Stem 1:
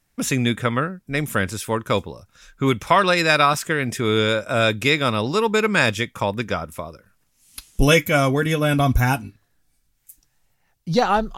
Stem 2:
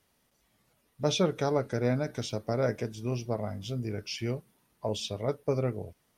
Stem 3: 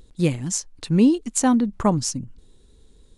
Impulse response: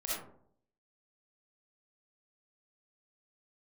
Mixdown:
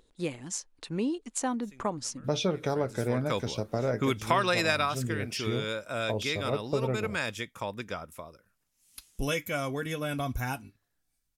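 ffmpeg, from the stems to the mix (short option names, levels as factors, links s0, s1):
-filter_complex "[0:a]bass=f=250:g=-3,treble=f=4000:g=2,adelay=1400,volume=0.841,afade=t=in:st=2.69:d=0.57:silence=0.251189,afade=t=out:st=4.62:d=0.39:silence=0.316228[s0];[1:a]agate=range=0.0224:threshold=0.001:ratio=3:detection=peak,highshelf=f=7800:g=-6.5,adelay=1250,volume=1.41[s1];[2:a]bass=f=250:g=-13,treble=f=4000:g=-4,volume=0.531,asplit=2[s2][s3];[s3]apad=whole_len=563412[s4];[s0][s4]sidechaincompress=threshold=0.00631:ratio=20:attack=5.8:release=1080[s5];[s5][s1][s2]amix=inputs=3:normalize=0,acompressor=threshold=0.0398:ratio=2"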